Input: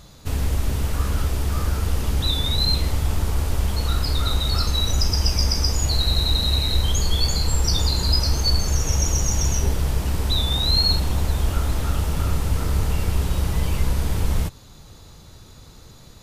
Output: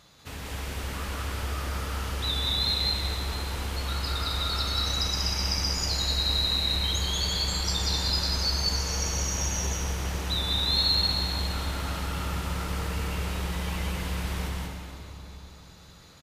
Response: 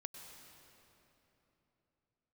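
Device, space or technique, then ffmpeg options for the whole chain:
stadium PA: -filter_complex "[0:a]highpass=f=130:p=1,equalizer=f=2100:t=o:w=2.6:g=8,aecho=1:1:189.5|262.4:0.794|0.355[s0];[1:a]atrim=start_sample=2205[s1];[s0][s1]afir=irnorm=-1:irlink=0,volume=0.501"

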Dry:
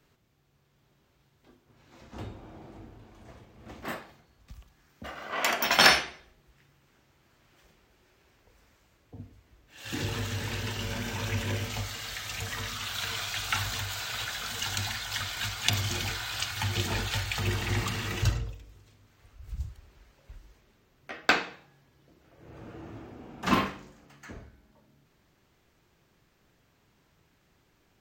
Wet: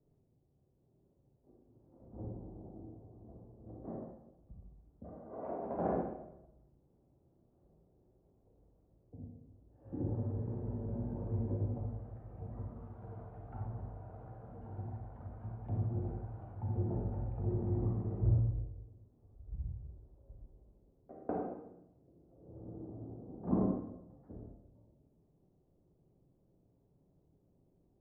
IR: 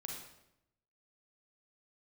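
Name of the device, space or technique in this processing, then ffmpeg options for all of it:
next room: -filter_complex "[0:a]lowpass=f=640:w=0.5412,lowpass=f=640:w=1.3066[s0];[1:a]atrim=start_sample=2205[s1];[s0][s1]afir=irnorm=-1:irlink=0,volume=0.891"

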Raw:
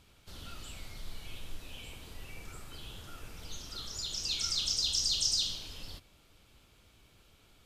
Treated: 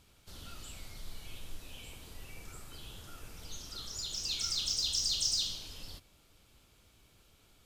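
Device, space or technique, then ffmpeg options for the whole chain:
exciter from parts: -filter_complex "[0:a]asplit=2[s0][s1];[s1]highpass=4100,asoftclip=type=tanh:threshold=0.0106,volume=0.562[s2];[s0][s2]amix=inputs=2:normalize=0,volume=0.794"

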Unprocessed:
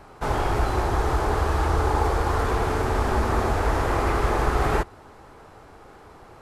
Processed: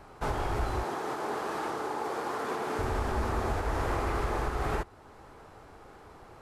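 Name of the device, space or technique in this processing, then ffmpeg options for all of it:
limiter into clipper: -filter_complex "[0:a]alimiter=limit=0.158:level=0:latency=1:release=459,asoftclip=type=hard:threshold=0.126,asettb=1/sr,asplit=3[s0][s1][s2];[s0]atrim=end=0.834[s3];[s1]atrim=start=0.83:end=2.79,asetpts=PTS-STARTPTS,afade=t=in:d=0.004:c=qsin,afade=t=out:st=1.956:d=0.004:c=qsin,highpass=f=180:w=0.5412,highpass=f=180:w=1.3066[s4];[s2]atrim=start=2.786[s5];[s3][s4]acrossfade=d=0.004:c1=hsin:c2=qsin[s6];[s6][s5]acrossfade=d=0.004:c1=qsin:c2=hsin,volume=0.631"

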